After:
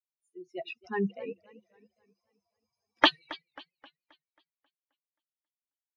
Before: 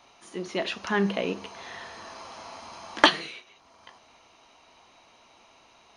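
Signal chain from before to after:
spectral dynamics exaggerated over time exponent 3
high shelf with overshoot 5,400 Hz −13 dB, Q 1.5
feedback echo with a swinging delay time 267 ms, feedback 43%, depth 133 cents, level −20 dB
level −2 dB

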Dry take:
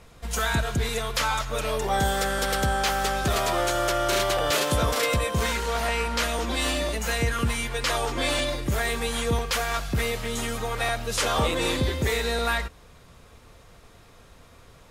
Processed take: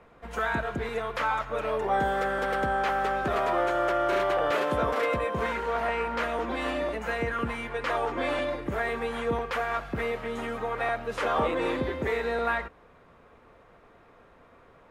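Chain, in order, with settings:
three-way crossover with the lows and the highs turned down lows −12 dB, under 210 Hz, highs −22 dB, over 2,300 Hz

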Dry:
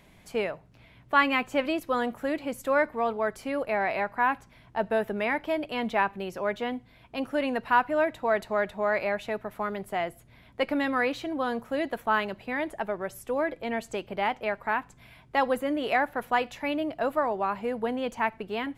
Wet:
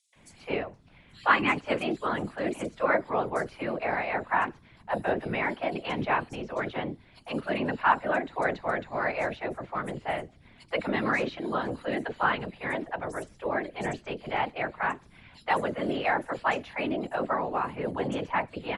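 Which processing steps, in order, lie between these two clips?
three-band delay without the direct sound highs, mids, lows 130/160 ms, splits 550/4,900 Hz
random phases in short frames
downsampling to 22,050 Hz

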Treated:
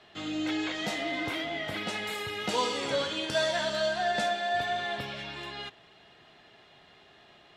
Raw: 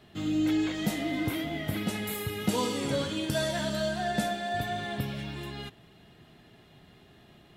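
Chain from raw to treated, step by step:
three-way crossover with the lows and the highs turned down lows −15 dB, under 450 Hz, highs −22 dB, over 7,100 Hz
level +4 dB

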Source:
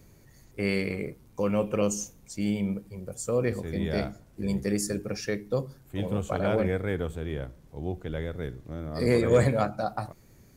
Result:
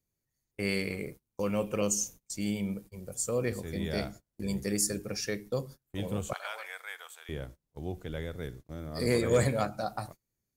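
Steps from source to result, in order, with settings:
high-shelf EQ 3,700 Hz +10.5 dB
noise gate −41 dBFS, range −27 dB
0:06.33–0:07.29: high-pass filter 900 Hz 24 dB per octave
level −4.5 dB

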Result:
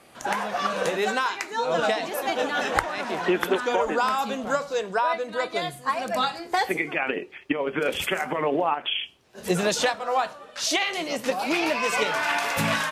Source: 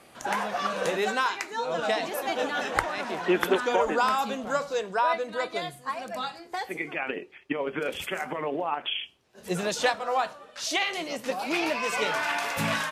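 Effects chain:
camcorder AGC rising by 10 dB per second

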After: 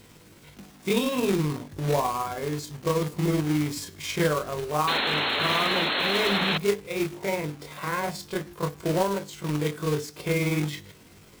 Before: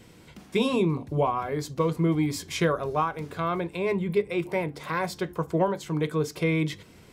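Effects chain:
log-companded quantiser 4 bits
time stretch by overlap-add 1.6×, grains 108 ms
sound drawn into the spectrogram noise, 0:04.87–0:06.58, 200–4,300 Hz −26 dBFS

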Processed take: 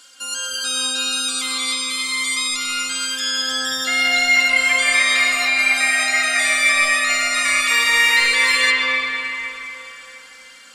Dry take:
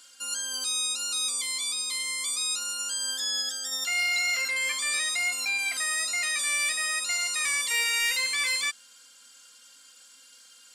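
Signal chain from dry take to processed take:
high-shelf EQ 5,700 Hz −6.5 dB
convolution reverb RT60 3.7 s, pre-delay 95 ms, DRR −5 dB
level +8.5 dB

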